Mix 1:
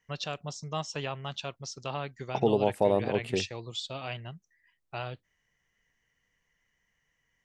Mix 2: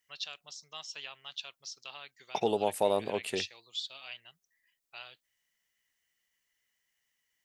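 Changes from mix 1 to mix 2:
first voice: add band-pass filter 4 kHz, Q 1.2; second voice: add tilt EQ +3.5 dB/octave

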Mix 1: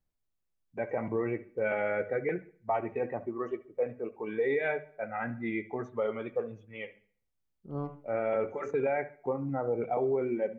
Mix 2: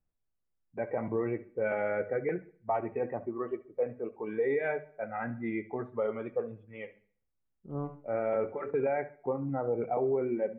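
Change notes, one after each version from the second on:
master: add Gaussian low-pass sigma 3.2 samples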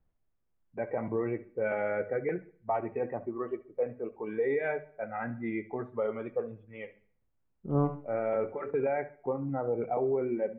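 second voice +9.0 dB

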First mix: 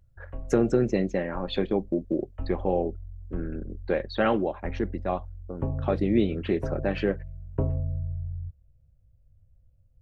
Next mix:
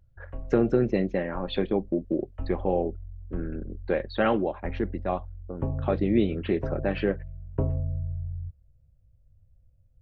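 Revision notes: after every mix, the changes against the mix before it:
speech: add low-pass 4.2 kHz 24 dB/octave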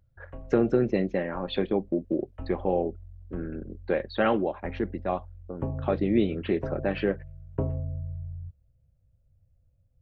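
master: add bass shelf 64 Hz -9.5 dB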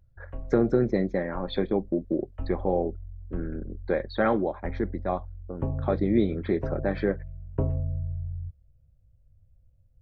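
speech: add Butterworth band-stop 2.8 kHz, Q 2.7; master: add bass shelf 64 Hz +9.5 dB

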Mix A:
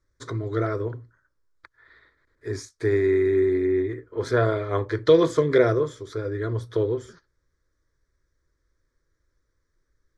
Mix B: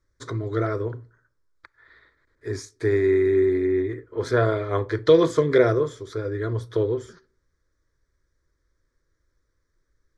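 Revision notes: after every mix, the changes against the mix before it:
reverb: on, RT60 0.60 s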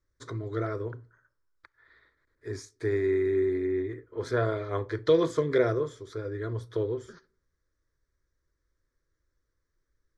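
first voice -6.5 dB

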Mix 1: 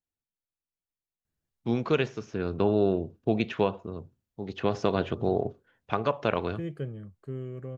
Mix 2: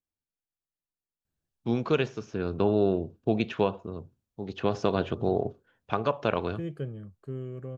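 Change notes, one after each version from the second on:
master: add peaking EQ 2 kHz -4.5 dB 0.31 oct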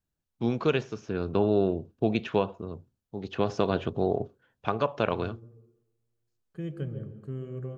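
first voice: entry -1.25 s; reverb: on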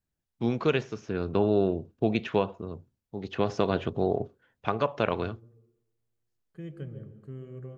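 second voice -5.0 dB; master: add peaking EQ 2 kHz +4.5 dB 0.31 oct

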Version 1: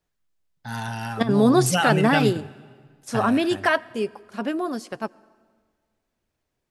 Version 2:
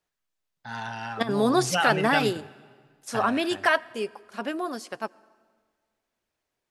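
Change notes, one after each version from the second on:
first voice: add distance through air 120 m; master: add bass shelf 300 Hz -12 dB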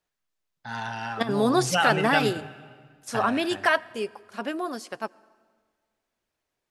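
first voice: send +7.5 dB

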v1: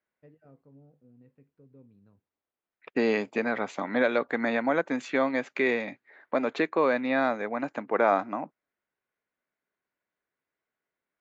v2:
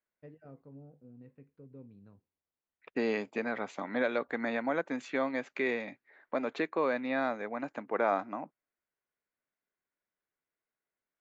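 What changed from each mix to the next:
first voice +4.0 dB; second voice -6.0 dB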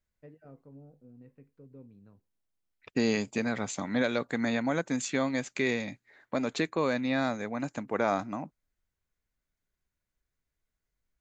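second voice: remove band-pass 330–2300 Hz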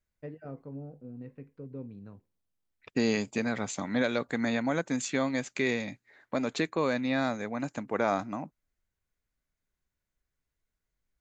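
first voice +9.5 dB

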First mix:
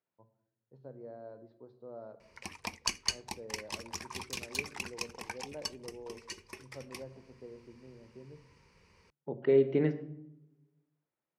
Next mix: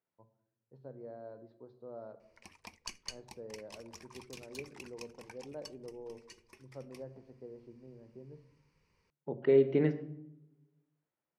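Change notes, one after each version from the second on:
background -11.5 dB; master: remove high-pass 41 Hz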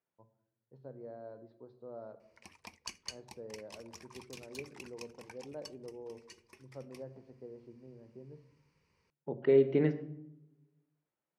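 background: add high-pass 56 Hz

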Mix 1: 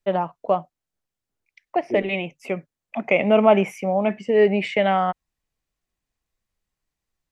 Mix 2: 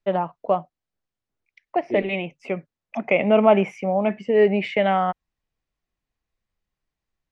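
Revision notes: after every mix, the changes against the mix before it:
second voice: remove low-pass 1.2 kHz; master: add distance through air 100 m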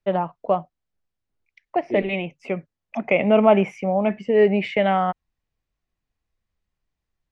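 first voice: add bass shelf 100 Hz +7.5 dB

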